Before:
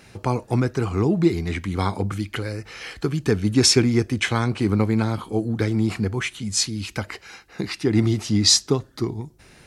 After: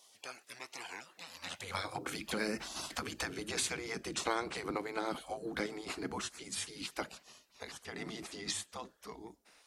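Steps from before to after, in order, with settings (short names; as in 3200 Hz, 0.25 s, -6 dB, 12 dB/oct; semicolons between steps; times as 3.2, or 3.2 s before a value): Doppler pass-by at 3.27, 8 m/s, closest 8.3 m; compressor 6:1, threshold -30 dBFS, peak gain reduction 16.5 dB; high-pass sweep 1300 Hz -> 92 Hz, 1.14–2.23; spectral gate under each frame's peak -15 dB weak; gain +6 dB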